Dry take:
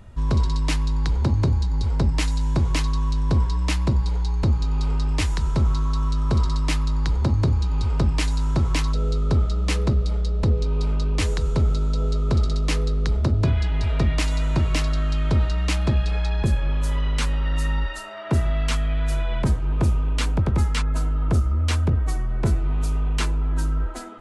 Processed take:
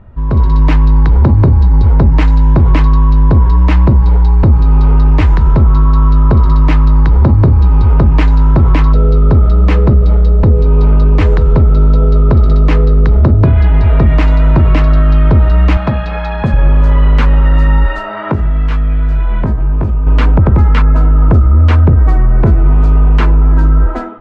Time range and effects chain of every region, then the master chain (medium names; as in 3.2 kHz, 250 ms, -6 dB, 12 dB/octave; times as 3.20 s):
15.77–16.54 s: high-pass 280 Hz 6 dB/octave + peaking EQ 370 Hz -11.5 dB 0.6 oct
18.08–20.07 s: doubling 19 ms -3.5 dB + compression 8:1, threshold -27 dBFS
whole clip: low-pass 1.6 kHz 12 dB/octave; level rider gain up to 11.5 dB; loudness maximiser +7.5 dB; trim -1 dB